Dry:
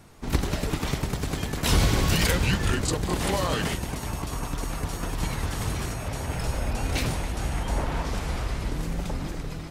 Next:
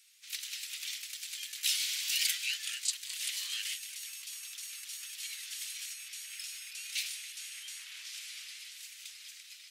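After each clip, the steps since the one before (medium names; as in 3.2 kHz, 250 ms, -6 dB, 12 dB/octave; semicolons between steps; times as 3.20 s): inverse Chebyshev high-pass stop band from 740 Hz, stop band 60 dB; trim -1.5 dB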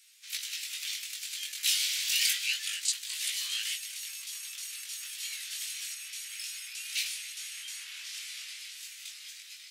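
chorus 0.29 Hz, delay 17.5 ms, depth 4 ms; trim +6.5 dB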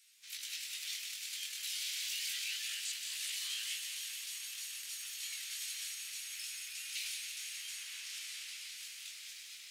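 peak limiter -25 dBFS, peak gain reduction 11 dB; echo that smears into a reverb 500 ms, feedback 63%, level -9 dB; bit-crushed delay 175 ms, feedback 55%, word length 10-bit, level -7 dB; trim -5.5 dB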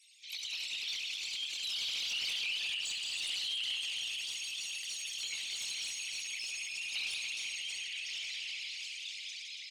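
resonances exaggerated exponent 3; overdrive pedal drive 11 dB, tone 4.5 kHz, clips at -27 dBFS; loudspeakers at several distances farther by 23 m -10 dB, 96 m -8 dB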